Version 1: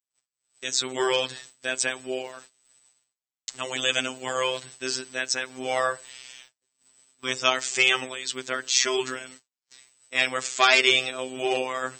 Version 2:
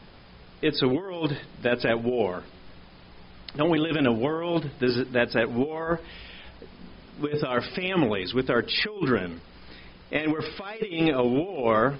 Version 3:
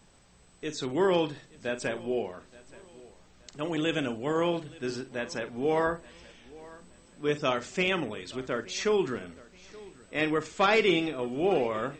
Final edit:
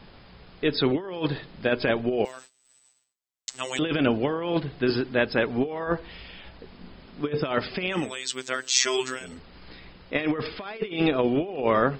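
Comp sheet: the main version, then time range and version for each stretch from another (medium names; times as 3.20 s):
2
2.25–3.79 s: from 1
8.01–9.30 s: from 1, crossfade 0.24 s
not used: 3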